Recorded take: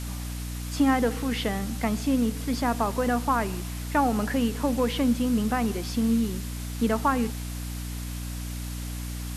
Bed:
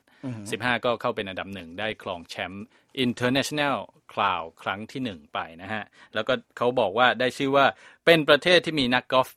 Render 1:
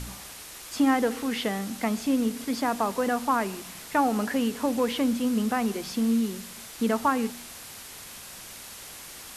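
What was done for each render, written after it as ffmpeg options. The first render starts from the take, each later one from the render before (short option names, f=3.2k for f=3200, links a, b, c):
-af "bandreject=f=60:t=h:w=4,bandreject=f=120:t=h:w=4,bandreject=f=180:t=h:w=4,bandreject=f=240:t=h:w=4,bandreject=f=300:t=h:w=4"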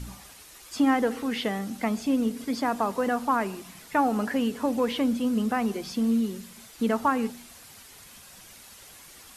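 -af "afftdn=nr=8:nf=-43"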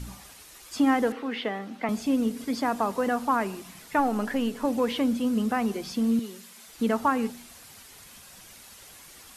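-filter_complex "[0:a]asettb=1/sr,asplit=3[a][b][c];[a]atrim=end=1.124[d];[b]atrim=start=1.12:end=1.89,asetpts=PTS-STARTPTS,afade=t=in:d=0.004:c=qsin,afade=t=out:st=0.766:d=0.004:c=qsin,acrossover=split=230 3900:gain=0.178 1 0.141[e][f][g];[e][f][g]amix=inputs=3:normalize=0[h];[c]atrim=start=1.886[i];[d][h]acrossfade=d=0.004:c1=hsin:c2=qsin[j];[j][i]acrossfade=d=0.004:c1=qsin:c2=hsin,asettb=1/sr,asplit=3[k][l][m];[k]atrim=end=3.994[n];[l]atrim=start=3.99:end=4.65,asetpts=PTS-STARTPTS,afade=t=in:d=0.004:c=qsin,afade=t=out:st=0.656:d=0.004:c=qsin,aeval=exprs='if(lt(val(0),0),0.708*val(0),val(0))':c=same[o];[m]atrim=start=4.646[p];[n][o]acrossfade=d=0.004:c1=hsin:c2=qsin[q];[q][p]acrossfade=d=0.004:c1=qsin:c2=hsin,asettb=1/sr,asplit=3[r][s][t];[r]atrim=end=6.194[u];[s]atrim=start=6.19:end=6.68,asetpts=PTS-STARTPTS,afade=t=in:d=0.004:c=qsin,afade=t=out:st=0.486:d=0.004:c=qsin,highpass=f=610:p=1[v];[t]atrim=start=6.676[w];[u][v]acrossfade=d=0.004:c1=hsin:c2=qsin[x];[x][w]acrossfade=d=0.004:c1=qsin:c2=hsin"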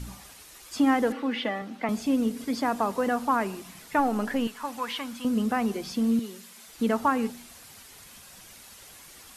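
-filter_complex "[0:a]asettb=1/sr,asplit=3[a][b][c];[a]atrim=end=1.104[d];[b]atrim=start=1.1:end=1.62,asetpts=PTS-STARTPTS,afade=t=in:d=0.004:c=qsin,afade=t=out:st=0.516:d=0.004:c=qsin,aecho=1:1:3.5:0.65,atrim=end_sample=22932[e];[c]atrim=start=1.616[f];[d][e]acrossfade=d=0.004:c1=hsin:c2=qsin[g];[g][f]acrossfade=d=0.004:c1=qsin:c2=hsin,asettb=1/sr,asplit=3[h][i][j];[h]atrim=end=4.474[k];[i]atrim=start=4.47:end=5.25,asetpts=PTS-STARTPTS,afade=t=in:d=0.004:c=qsin,afade=t=out:st=0.776:d=0.004:c=qsin,lowshelf=f=700:t=q:w=1.5:g=-12[l];[j]atrim=start=5.246[m];[k][l]acrossfade=d=0.004:c1=hsin:c2=qsin[n];[n][m]acrossfade=d=0.004:c1=qsin:c2=hsin"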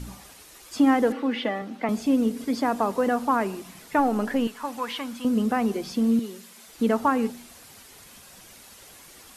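-af "equalizer=f=390:w=0.66:g=4"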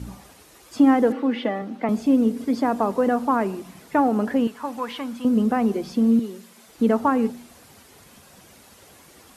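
-af "highpass=56,tiltshelf=f=1.3k:g=4"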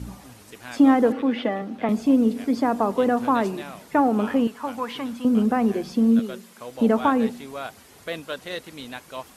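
-filter_complex "[1:a]volume=-14.5dB[a];[0:a][a]amix=inputs=2:normalize=0"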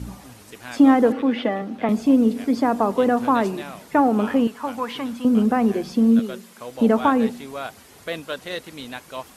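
-af "volume=2dB"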